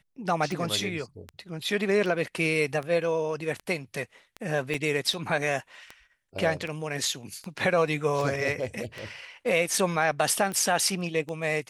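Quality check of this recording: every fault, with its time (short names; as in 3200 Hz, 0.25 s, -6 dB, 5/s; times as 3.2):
tick 78 rpm
4.74–4.75 gap 5.2 ms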